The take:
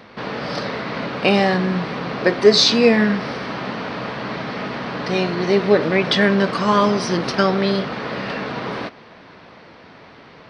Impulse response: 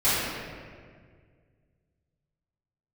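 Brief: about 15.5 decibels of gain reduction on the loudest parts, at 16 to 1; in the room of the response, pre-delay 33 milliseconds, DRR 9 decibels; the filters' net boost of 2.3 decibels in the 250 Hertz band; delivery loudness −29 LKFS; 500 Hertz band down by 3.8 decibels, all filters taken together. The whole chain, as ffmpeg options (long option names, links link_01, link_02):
-filter_complex "[0:a]equalizer=frequency=250:width_type=o:gain=4.5,equalizer=frequency=500:width_type=o:gain=-6.5,acompressor=threshold=-25dB:ratio=16,asplit=2[link_01][link_02];[1:a]atrim=start_sample=2205,adelay=33[link_03];[link_02][link_03]afir=irnorm=-1:irlink=0,volume=-25.5dB[link_04];[link_01][link_04]amix=inputs=2:normalize=0,volume=-0.5dB"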